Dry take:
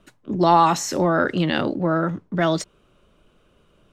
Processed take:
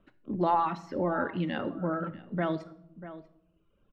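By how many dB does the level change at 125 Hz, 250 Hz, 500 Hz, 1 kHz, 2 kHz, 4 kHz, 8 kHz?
−10.5 dB, −9.5 dB, −10.0 dB, −10.5 dB, −11.5 dB, −17.5 dB, below −30 dB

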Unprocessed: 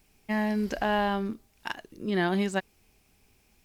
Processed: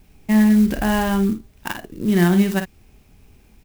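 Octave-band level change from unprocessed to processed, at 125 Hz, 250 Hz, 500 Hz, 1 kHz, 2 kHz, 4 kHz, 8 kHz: +14.0, +13.5, +5.5, +3.5, +5.5, +5.5, +13.5 decibels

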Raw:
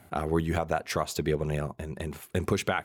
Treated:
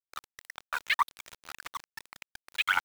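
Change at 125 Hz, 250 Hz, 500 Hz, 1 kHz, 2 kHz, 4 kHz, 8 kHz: below −30 dB, below −30 dB, −28.5 dB, −0.5 dB, +5.0 dB, +3.0 dB, −7.5 dB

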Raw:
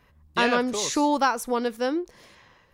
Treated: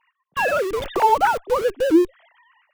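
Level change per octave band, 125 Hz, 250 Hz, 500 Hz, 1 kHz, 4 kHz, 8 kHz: +4.0, +4.0, +6.0, +6.0, −3.5, −8.0 decibels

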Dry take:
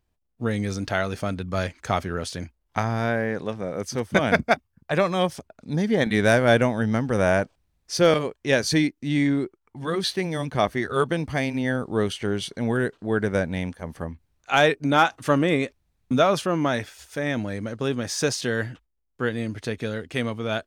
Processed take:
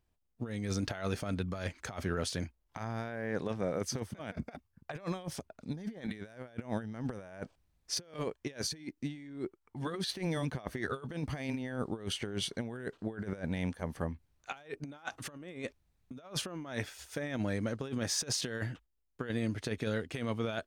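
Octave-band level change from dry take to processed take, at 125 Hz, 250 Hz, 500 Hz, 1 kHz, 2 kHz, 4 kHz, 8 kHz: −10.5, −12.5, −16.0, −18.5, −16.5, −9.5, −5.5 decibels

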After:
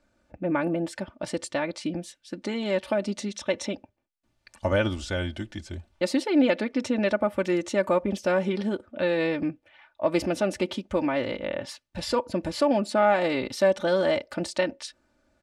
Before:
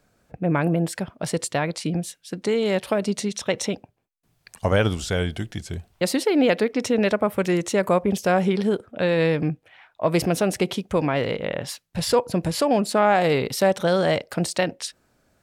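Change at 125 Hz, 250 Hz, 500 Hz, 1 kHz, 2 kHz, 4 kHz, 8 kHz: −9.0, −3.5, −3.5, −5.0, −3.5, −5.0, −9.0 decibels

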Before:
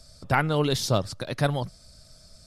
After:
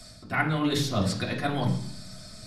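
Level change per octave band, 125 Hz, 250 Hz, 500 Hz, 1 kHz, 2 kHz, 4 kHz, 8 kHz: −1.5, +2.5, −5.0, −3.0, +0.5, −1.0, −2.5 decibels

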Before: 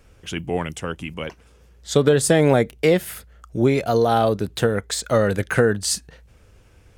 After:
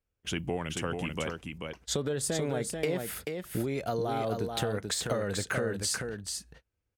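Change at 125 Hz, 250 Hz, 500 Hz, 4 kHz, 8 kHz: −11.5, −12.0, −13.0, −6.5, −6.5 decibels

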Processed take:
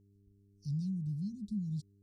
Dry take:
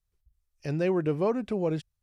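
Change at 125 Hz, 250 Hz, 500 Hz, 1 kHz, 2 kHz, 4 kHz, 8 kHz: −3.0 dB, −7.5 dB, below −40 dB, below −40 dB, below −40 dB, below −10 dB, can't be measured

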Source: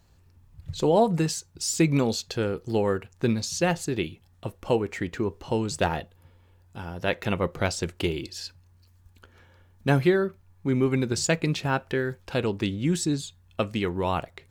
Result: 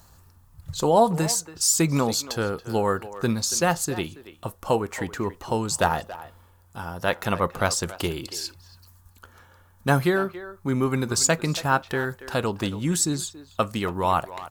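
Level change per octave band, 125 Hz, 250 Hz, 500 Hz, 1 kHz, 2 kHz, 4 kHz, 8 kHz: 0.0, −0.5, +0.5, +6.0, +3.0, +3.5, +8.5 decibels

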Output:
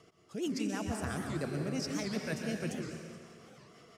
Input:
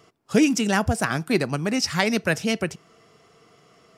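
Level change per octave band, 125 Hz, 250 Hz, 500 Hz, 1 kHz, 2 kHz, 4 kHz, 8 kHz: −10.0, −12.5, −13.5, −15.5, −16.5, −15.0, −13.5 decibels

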